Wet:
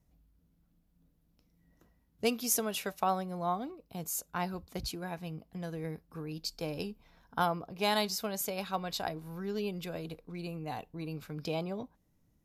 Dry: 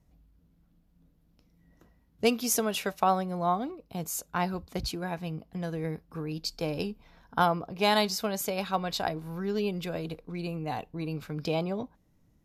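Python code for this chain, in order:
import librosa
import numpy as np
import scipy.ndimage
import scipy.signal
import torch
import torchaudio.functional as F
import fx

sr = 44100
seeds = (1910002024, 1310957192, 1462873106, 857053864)

y = fx.high_shelf(x, sr, hz=7400.0, db=6.5)
y = y * librosa.db_to_amplitude(-5.5)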